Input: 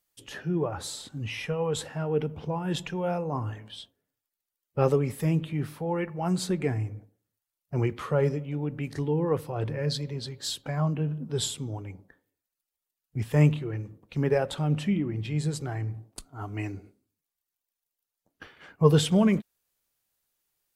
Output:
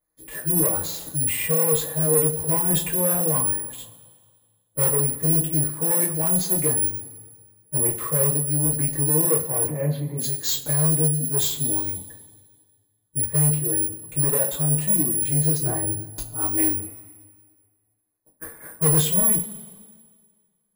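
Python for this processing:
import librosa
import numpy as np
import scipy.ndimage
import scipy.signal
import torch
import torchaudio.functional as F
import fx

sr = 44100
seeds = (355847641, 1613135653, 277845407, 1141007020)

y = fx.wiener(x, sr, points=15)
y = fx.rider(y, sr, range_db=4, speed_s=0.5)
y = (np.kron(scipy.signal.resample_poly(y, 1, 4), np.eye(4)[0]) * 4)[:len(y)]
y = fx.cabinet(y, sr, low_hz=150.0, low_slope=24, high_hz=2400.0, hz=(460.0, 720.0, 1700.0), db=(-7, 7, -7), at=(9.63, 10.17), fade=0.02)
y = 10.0 ** (-13.5 / 20.0) * np.tanh(y / 10.0 ** (-13.5 / 20.0))
y = fx.tilt_shelf(y, sr, db=5.5, hz=1400.0, at=(15.65, 16.09))
y = fx.rev_double_slope(y, sr, seeds[0], early_s=0.21, late_s=1.8, knee_db=-22, drr_db=-9.0)
y = y * 10.0 ** (-4.5 / 20.0)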